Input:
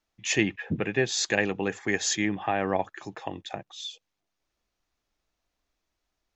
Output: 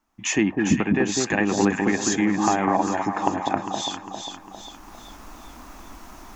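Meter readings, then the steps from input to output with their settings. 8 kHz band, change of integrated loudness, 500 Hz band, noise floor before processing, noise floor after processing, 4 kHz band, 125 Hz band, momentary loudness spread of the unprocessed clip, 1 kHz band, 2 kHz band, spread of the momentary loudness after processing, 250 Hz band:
+4.0 dB, +5.5 dB, +4.0 dB, -82 dBFS, -45 dBFS, +1.5 dB, +6.0 dB, 13 LU, +9.5 dB, +2.0 dB, 14 LU, +9.5 dB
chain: recorder AGC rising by 19 dB/s; graphic EQ 125/250/500/1000/2000/4000 Hz -6/+9/-8/+9/-3/-9 dB; in parallel at +1 dB: compressor, threshold -32 dBFS, peak gain reduction 15 dB; on the sum: echo with dull and thin repeats by turns 0.201 s, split 1000 Hz, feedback 69%, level -3 dB

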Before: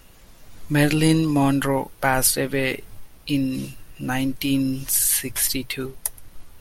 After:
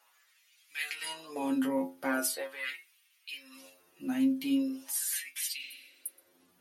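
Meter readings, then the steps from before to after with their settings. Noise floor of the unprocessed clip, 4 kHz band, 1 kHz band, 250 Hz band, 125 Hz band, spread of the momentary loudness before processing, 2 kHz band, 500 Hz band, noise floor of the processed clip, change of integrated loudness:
-48 dBFS, -11.5 dB, -14.5 dB, -10.5 dB, under -30 dB, 12 LU, -11.0 dB, -13.5 dB, -68 dBFS, -12.0 dB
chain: metallic resonator 87 Hz, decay 0.32 s, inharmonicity 0.002; LFO high-pass sine 0.41 Hz 210–2600 Hz; spectral repair 5.62–6.22, 230–8800 Hz both; gain -4.5 dB

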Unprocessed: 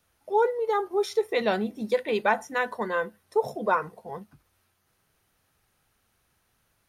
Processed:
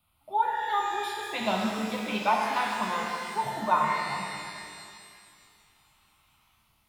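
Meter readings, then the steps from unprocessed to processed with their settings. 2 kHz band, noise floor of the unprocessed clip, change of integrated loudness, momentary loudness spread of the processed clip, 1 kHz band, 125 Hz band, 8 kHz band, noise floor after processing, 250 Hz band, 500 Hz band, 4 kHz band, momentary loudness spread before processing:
-1.0 dB, -72 dBFS, -2.0 dB, 14 LU, +3.0 dB, +2.0 dB, +5.0 dB, -68 dBFS, +0.5 dB, -10.0 dB, +4.5 dB, 6 LU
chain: spectral gain 4.43–6.55, 760–4200 Hz +7 dB; fixed phaser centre 1700 Hz, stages 6; shimmer reverb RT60 2.3 s, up +12 st, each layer -8 dB, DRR -1 dB

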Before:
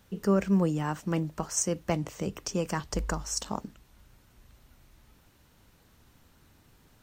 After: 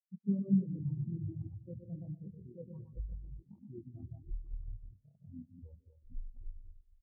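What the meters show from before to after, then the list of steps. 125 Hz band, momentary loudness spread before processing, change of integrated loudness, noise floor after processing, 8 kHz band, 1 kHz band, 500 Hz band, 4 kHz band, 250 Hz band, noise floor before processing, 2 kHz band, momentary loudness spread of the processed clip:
-5.0 dB, 10 LU, -9.5 dB, -71 dBFS, under -40 dB, under -40 dB, -20.0 dB, under -40 dB, -6.5 dB, -62 dBFS, under -40 dB, 22 LU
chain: LPF 2400 Hz; feedback echo 0.119 s, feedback 46%, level -4 dB; echoes that change speed 86 ms, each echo -6 st, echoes 2, each echo -6 dB; hard clip -21 dBFS, distortion -14 dB; reverse; compressor 10:1, threshold -38 dBFS, peak gain reduction 15 dB; reverse; AM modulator 41 Hz, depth 35%; on a send: narrowing echo 0.153 s, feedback 47%, band-pass 370 Hz, level -5 dB; on the sum: spectral expander 4:1; gain +10.5 dB

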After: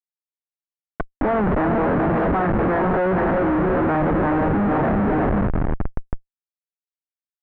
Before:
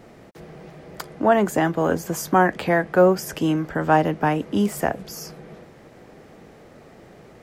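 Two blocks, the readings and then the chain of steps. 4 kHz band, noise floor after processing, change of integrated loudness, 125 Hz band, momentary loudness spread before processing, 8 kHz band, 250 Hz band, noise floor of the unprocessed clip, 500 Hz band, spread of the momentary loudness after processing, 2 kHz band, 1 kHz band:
under -10 dB, under -85 dBFS, +1.0 dB, +4.5 dB, 16 LU, under -40 dB, +3.5 dB, -48 dBFS, +0.5 dB, 12 LU, -0.5 dB, +0.5 dB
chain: steep high-pass 160 Hz 72 dB/oct; diffused feedback echo 0.451 s, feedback 55%, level -8 dB; Schmitt trigger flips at -27 dBFS; LPF 1700 Hz 24 dB/oct; gain +4 dB

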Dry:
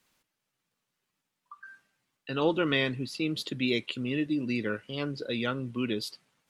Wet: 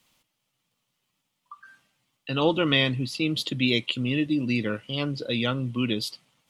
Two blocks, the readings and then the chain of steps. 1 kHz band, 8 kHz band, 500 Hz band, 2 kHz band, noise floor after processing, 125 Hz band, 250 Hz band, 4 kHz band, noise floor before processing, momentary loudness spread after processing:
+4.0 dB, +5.0 dB, +2.5 dB, +4.0 dB, -79 dBFS, +7.5 dB, +4.5 dB, +7.5 dB, -84 dBFS, 8 LU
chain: thirty-one-band EQ 125 Hz +4 dB, 400 Hz -6 dB, 1600 Hz -8 dB, 3150 Hz +5 dB; gain +5 dB

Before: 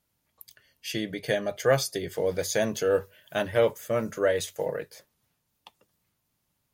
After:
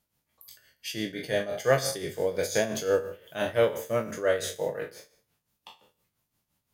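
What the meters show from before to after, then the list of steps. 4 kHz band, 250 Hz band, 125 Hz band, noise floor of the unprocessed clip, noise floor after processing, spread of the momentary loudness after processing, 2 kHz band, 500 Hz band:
-0.5 dB, -2.0 dB, -2.0 dB, -77 dBFS, -81 dBFS, 11 LU, -0.5 dB, -1.0 dB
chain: spectral trails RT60 0.50 s; de-hum 90.44 Hz, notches 30; tremolo 5.8 Hz, depth 64%

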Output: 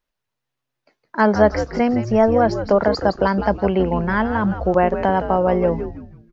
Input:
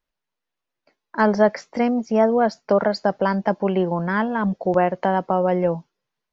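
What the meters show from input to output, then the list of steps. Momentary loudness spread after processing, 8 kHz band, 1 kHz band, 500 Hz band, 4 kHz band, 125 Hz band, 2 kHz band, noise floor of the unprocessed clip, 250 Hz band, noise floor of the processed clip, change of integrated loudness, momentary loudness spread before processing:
5 LU, n/a, +2.5 dB, +2.5 dB, +2.5 dB, +4.0 dB, +2.5 dB, -83 dBFS, +2.5 dB, -81 dBFS, +2.5 dB, 5 LU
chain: frequency-shifting echo 0.163 s, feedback 37%, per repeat -130 Hz, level -9 dB; gain +2 dB

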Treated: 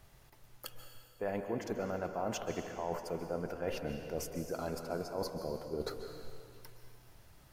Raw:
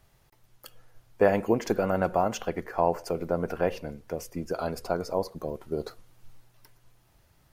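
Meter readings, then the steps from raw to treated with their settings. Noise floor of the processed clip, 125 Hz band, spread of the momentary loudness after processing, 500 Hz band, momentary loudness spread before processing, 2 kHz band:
-61 dBFS, -8.0 dB, 15 LU, -10.0 dB, 12 LU, -9.5 dB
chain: reverse; compressor 6:1, threshold -37 dBFS, peak gain reduction 19.5 dB; reverse; plate-style reverb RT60 2.1 s, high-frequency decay 0.95×, pre-delay 0.12 s, DRR 6 dB; gain +2 dB

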